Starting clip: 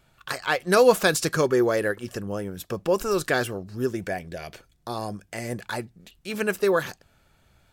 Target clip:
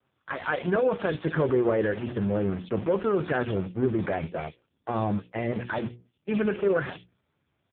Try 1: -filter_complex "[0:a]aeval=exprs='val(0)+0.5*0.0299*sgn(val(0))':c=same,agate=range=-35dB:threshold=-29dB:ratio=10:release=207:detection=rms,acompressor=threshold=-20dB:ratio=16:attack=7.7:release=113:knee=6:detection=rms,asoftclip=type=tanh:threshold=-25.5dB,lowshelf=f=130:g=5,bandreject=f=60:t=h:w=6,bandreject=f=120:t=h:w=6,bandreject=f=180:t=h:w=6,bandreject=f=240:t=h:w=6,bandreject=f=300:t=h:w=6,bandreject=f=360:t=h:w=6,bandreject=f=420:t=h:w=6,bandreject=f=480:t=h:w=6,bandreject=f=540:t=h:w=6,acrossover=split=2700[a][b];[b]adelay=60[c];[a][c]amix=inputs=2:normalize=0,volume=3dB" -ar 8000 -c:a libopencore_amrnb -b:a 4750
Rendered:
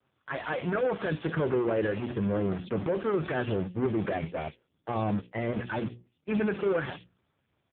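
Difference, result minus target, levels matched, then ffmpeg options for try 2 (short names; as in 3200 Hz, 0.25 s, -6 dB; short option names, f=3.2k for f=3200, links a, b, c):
soft clip: distortion +11 dB
-filter_complex "[0:a]aeval=exprs='val(0)+0.5*0.0299*sgn(val(0))':c=same,agate=range=-35dB:threshold=-29dB:ratio=10:release=207:detection=rms,acompressor=threshold=-20dB:ratio=16:attack=7.7:release=113:knee=6:detection=rms,asoftclip=type=tanh:threshold=-17dB,lowshelf=f=130:g=5,bandreject=f=60:t=h:w=6,bandreject=f=120:t=h:w=6,bandreject=f=180:t=h:w=6,bandreject=f=240:t=h:w=6,bandreject=f=300:t=h:w=6,bandreject=f=360:t=h:w=6,bandreject=f=420:t=h:w=6,bandreject=f=480:t=h:w=6,bandreject=f=540:t=h:w=6,acrossover=split=2700[a][b];[b]adelay=60[c];[a][c]amix=inputs=2:normalize=0,volume=3dB" -ar 8000 -c:a libopencore_amrnb -b:a 4750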